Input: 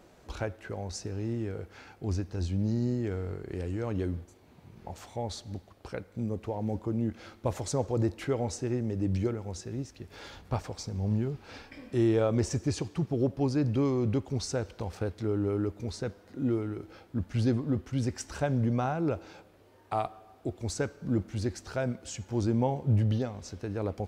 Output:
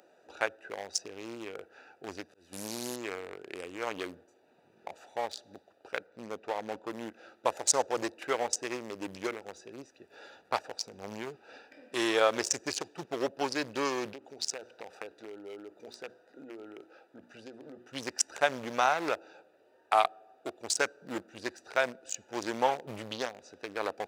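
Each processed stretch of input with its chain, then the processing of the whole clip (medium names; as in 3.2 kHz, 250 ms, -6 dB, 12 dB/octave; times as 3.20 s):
2.28–2.96 s: one-bit delta coder 64 kbps, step -39.5 dBFS + slow attack 199 ms + gate -33 dBFS, range -7 dB
6.06–6.90 s: low-pass 5.7 kHz + upward compressor, threshold -53 dBFS
14.13–17.89 s: bass shelf 170 Hz -9 dB + hum notches 60/120/180/240/300/360 Hz + compression 12:1, threshold -34 dBFS
whole clip: local Wiener filter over 41 samples; high-pass 770 Hz 12 dB/octave; treble shelf 2.1 kHz +9.5 dB; trim +8.5 dB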